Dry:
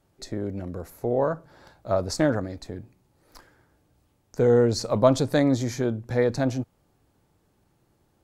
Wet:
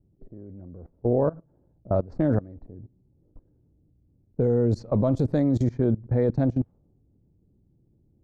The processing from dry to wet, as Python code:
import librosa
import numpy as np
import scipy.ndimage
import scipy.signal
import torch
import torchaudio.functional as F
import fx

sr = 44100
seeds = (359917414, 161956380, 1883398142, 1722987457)

y = fx.tilt_shelf(x, sr, db=9.5, hz=730.0)
y = fx.env_lowpass(y, sr, base_hz=350.0, full_db=-11.5)
y = fx.level_steps(y, sr, step_db=21)